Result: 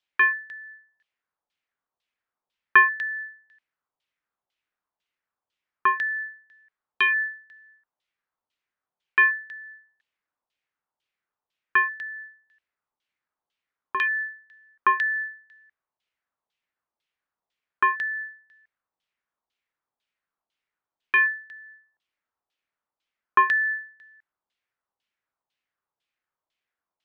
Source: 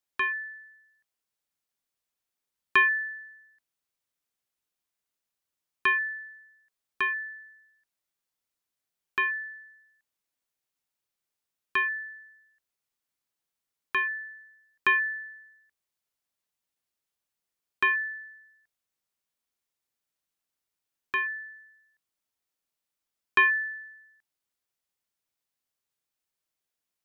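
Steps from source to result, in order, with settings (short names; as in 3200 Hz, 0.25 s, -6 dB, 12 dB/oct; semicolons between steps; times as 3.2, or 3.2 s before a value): low shelf 380 Hz -4.5 dB; LFO low-pass saw down 2 Hz 800–3400 Hz; tone controls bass 0 dB, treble +7 dB; gain +2.5 dB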